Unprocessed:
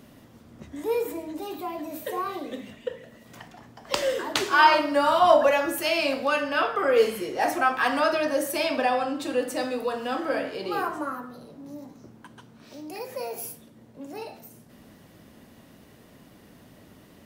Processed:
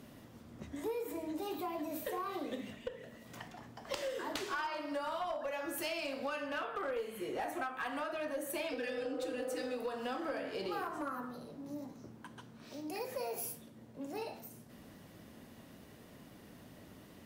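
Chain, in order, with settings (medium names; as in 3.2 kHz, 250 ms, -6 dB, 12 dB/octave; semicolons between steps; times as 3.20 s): 6.46–8.69 s: peaking EQ 5.2 kHz -14 dB 0.31 oct; 8.74–9.69 s: spectral replace 350–1500 Hz after; compression 16:1, threshold -31 dBFS, peak gain reduction 20.5 dB; flange 1.1 Hz, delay 7.2 ms, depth 5.4 ms, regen -84%; one-sided clip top -34 dBFS; trim +1 dB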